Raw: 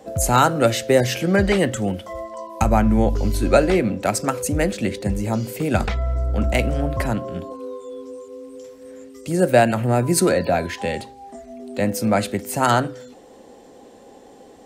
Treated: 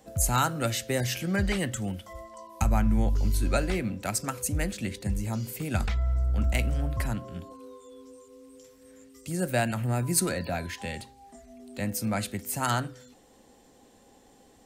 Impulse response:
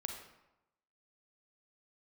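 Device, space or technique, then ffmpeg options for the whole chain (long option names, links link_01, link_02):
smiley-face EQ: -af "lowshelf=frequency=85:gain=6.5,equalizer=frequency=480:width_type=o:width=1.7:gain=-8,highshelf=frequency=8300:gain=7.5,volume=-7.5dB"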